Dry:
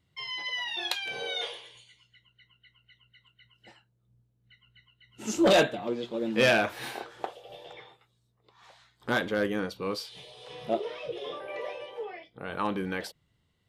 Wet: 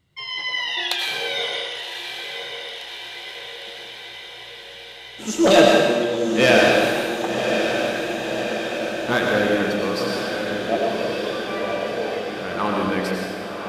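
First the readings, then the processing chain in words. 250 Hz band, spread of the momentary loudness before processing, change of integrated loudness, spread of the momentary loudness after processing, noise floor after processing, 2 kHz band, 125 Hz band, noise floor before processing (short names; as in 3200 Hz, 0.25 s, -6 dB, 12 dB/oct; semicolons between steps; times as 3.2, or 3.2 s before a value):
+10.0 dB, 21 LU, +8.5 dB, 18 LU, -39 dBFS, +10.0 dB, +9.0 dB, -73 dBFS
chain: on a send: diffused feedback echo 1.092 s, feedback 70%, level -7 dB; on the sum: digital reverb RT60 1.5 s, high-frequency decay 1×, pre-delay 60 ms, DRR -0.5 dB; gain +5.5 dB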